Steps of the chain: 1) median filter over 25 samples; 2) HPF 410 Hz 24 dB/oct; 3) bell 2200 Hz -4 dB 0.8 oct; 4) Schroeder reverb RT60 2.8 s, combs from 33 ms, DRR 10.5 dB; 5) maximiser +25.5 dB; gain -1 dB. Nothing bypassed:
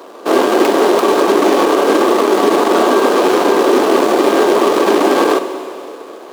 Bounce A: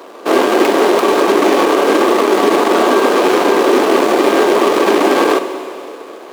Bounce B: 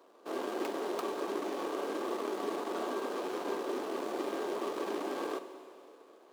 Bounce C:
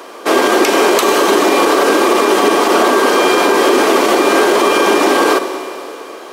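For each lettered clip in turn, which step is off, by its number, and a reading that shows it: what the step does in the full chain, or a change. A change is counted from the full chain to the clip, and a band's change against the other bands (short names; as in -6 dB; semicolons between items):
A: 3, 2 kHz band +2.0 dB; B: 5, crest factor change +6.0 dB; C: 1, 250 Hz band -5.5 dB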